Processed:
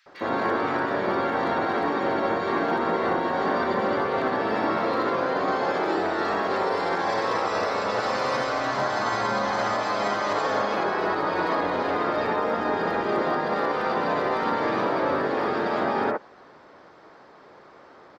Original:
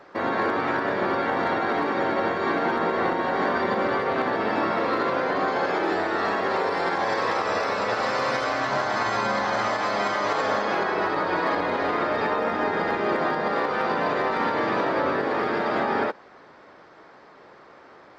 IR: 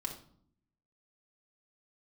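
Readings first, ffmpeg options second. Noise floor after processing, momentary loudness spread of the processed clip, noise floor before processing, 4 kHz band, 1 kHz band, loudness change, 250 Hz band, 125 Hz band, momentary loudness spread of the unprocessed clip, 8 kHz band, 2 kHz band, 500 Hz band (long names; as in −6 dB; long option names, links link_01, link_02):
−50 dBFS, 1 LU, −50 dBFS, −1.0 dB, −0.5 dB, −0.5 dB, 0.0 dB, 0.0 dB, 1 LU, can't be measured, −2.0 dB, 0.0 dB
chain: -filter_complex "[0:a]acrossover=split=2100[link_01][link_02];[link_01]adelay=60[link_03];[link_03][link_02]amix=inputs=2:normalize=0"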